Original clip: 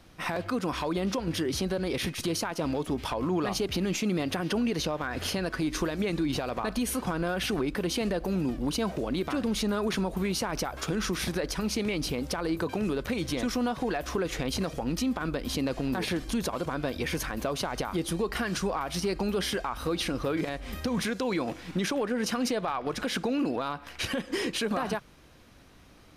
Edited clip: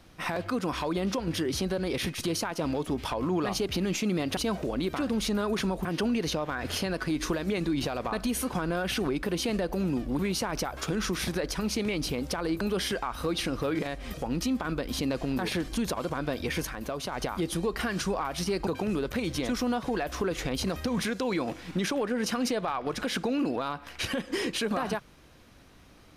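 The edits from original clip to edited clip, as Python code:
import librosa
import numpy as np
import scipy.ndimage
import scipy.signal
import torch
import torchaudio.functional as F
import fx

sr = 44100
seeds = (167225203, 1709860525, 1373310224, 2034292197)

y = fx.edit(x, sr, fx.move(start_s=8.71, length_s=1.48, to_s=4.37),
    fx.swap(start_s=12.61, length_s=2.09, other_s=19.23, other_length_s=1.53),
    fx.clip_gain(start_s=17.21, length_s=0.47, db=-3.5), tone=tone)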